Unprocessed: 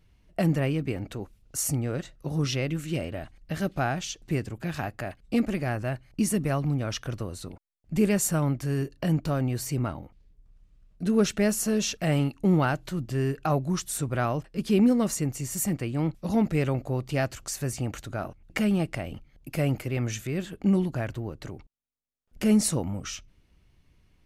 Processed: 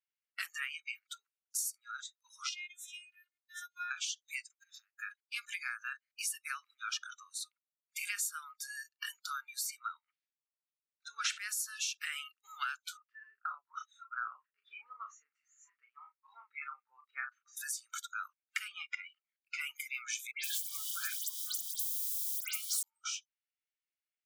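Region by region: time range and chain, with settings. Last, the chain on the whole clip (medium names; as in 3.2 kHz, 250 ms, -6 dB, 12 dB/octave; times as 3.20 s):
2.49–3.91 s: high-pass 190 Hz + compression 1.5:1, threshold -42 dBFS + robot voice 356 Hz
4.43–5.01 s: compression 12:1, threshold -40 dBFS + hard clipper -33.5 dBFS
9.99–11.37 s: distance through air 61 m + decay stretcher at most 24 dB/s
12.97–17.57 s: low-pass 1.4 kHz + doubling 34 ms -6 dB
18.68–19.61 s: low-pass 5.1 kHz + peaking EQ 310 Hz +4 dB 1.2 oct
20.31–22.83 s: zero-crossing glitches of -21 dBFS + phase dispersion highs, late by 132 ms, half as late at 2.7 kHz
whole clip: Chebyshev high-pass 1.3 kHz, order 5; spectral noise reduction 29 dB; compression 4:1, threshold -40 dBFS; trim +4.5 dB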